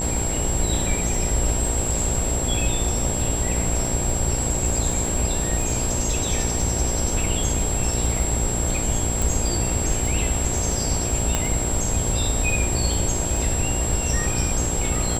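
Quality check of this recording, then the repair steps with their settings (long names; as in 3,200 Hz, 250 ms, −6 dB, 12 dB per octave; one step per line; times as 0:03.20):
mains buzz 60 Hz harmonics 16 −28 dBFS
surface crackle 21 per second −26 dBFS
whistle 7,600 Hz −26 dBFS
0:09.22: click
0:11.35: click −6 dBFS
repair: click removal
hum removal 60 Hz, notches 16
notch filter 7,600 Hz, Q 30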